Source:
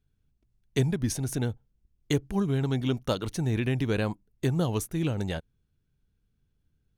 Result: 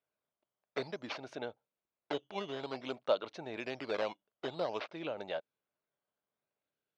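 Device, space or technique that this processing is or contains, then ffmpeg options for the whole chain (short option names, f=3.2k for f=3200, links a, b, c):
circuit-bent sampling toy: -af "acrusher=samples=8:mix=1:aa=0.000001:lfo=1:lforange=12.8:lforate=0.53,highpass=560,equalizer=f=600:t=q:w=4:g=9,equalizer=f=1.8k:t=q:w=4:g=-5,equalizer=f=3.1k:t=q:w=4:g=-3,lowpass=f=4k:w=0.5412,lowpass=f=4k:w=1.3066,volume=-3dB"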